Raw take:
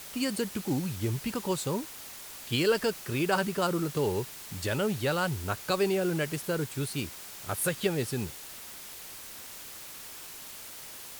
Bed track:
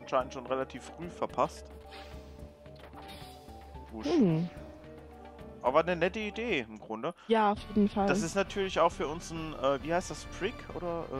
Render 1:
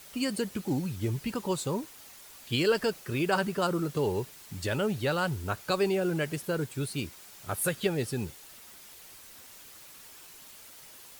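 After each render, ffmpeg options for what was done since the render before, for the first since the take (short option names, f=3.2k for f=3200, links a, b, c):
-af "afftdn=nr=7:nf=-45"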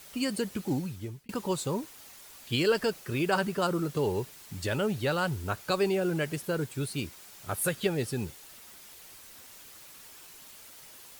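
-filter_complex "[0:a]asplit=2[a][b];[a]atrim=end=1.29,asetpts=PTS-STARTPTS,afade=t=out:st=0.73:d=0.56[c];[b]atrim=start=1.29,asetpts=PTS-STARTPTS,afade=t=in:d=0.004:c=hsin[d];[c][d]concat=n=2:v=0:a=1"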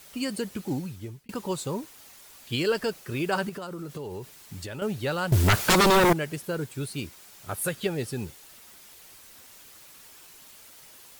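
-filter_complex "[0:a]asettb=1/sr,asplit=3[a][b][c];[a]atrim=end=3.494[d];[b]atrim=start=3.49:end=4.82,asetpts=PTS-STARTPTS,afade=t=in:d=0.004:c=qsin,afade=t=out:st=1.326:d=0.004:c=qsin,acompressor=threshold=-33dB:ratio=6:attack=3.2:release=140:knee=1:detection=peak[e];[c]atrim=start=4.816[f];[d][e]acrossfade=d=0.004:c1=hsin:c2=qsin[g];[g][f]acrossfade=d=0.004:c1=qsin:c2=hsin,asettb=1/sr,asplit=3[h][i][j];[h]atrim=end=5.324[k];[i]atrim=start=5.32:end=6.13,asetpts=PTS-STARTPTS,afade=t=in:d=0.004:c=qsin,afade=t=out:st=0.806:d=0.004:c=qsin,aeval=exprs='0.178*sin(PI/2*5.01*val(0)/0.178)':c=same[l];[j]atrim=start=6.126[m];[k][l]acrossfade=d=0.004:c1=hsin:c2=qsin[n];[n][m]acrossfade=d=0.004:c1=qsin:c2=hsin"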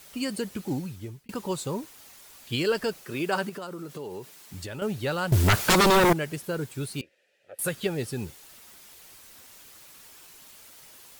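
-filter_complex "[0:a]asettb=1/sr,asplit=3[a][b][c];[a]atrim=end=3.054[d];[b]atrim=start=3.05:end=4.54,asetpts=PTS-STARTPTS,afade=t=in:d=0.004:c=qsin,afade=t=out:st=1.486:d=0.004:c=qsin,highpass=170[e];[c]atrim=start=4.536[f];[d][e]acrossfade=d=0.004:c1=hsin:c2=qsin[g];[g][f]acrossfade=d=0.004:c1=qsin:c2=hsin,asettb=1/sr,asplit=3[h][i][j];[h]atrim=end=7.014[k];[i]atrim=start=7.01:end=7.59,asetpts=PTS-STARTPTS,afade=t=in:d=0.004:c=qsin,afade=t=out:st=0.576:d=0.004:c=qsin,asplit=3[l][m][n];[l]bandpass=f=530:t=q:w=8,volume=0dB[o];[m]bandpass=f=1.84k:t=q:w=8,volume=-6dB[p];[n]bandpass=f=2.48k:t=q:w=8,volume=-9dB[q];[o][p][q]amix=inputs=3:normalize=0[r];[j]atrim=start=7.586[s];[k][r]acrossfade=d=0.004:c1=hsin:c2=qsin[t];[t][s]acrossfade=d=0.004:c1=qsin:c2=hsin"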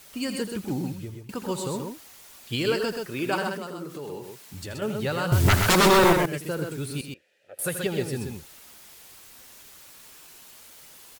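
-af "aecho=1:1:81.63|128.3:0.282|0.562"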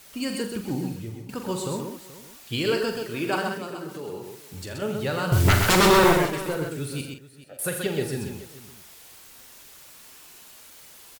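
-af "aecho=1:1:44|429:0.398|0.141"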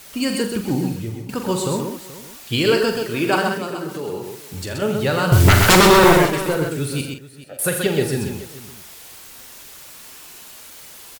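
-af "volume=7.5dB,alimiter=limit=-3dB:level=0:latency=1"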